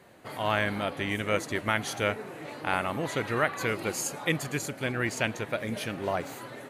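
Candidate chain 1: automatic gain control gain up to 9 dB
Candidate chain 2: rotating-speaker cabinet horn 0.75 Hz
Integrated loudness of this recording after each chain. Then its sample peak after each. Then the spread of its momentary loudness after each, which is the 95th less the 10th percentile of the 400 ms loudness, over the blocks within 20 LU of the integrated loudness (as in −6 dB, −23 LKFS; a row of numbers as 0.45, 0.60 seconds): −22.5, −33.0 LKFS; −3.0, −11.0 dBFS; 5, 7 LU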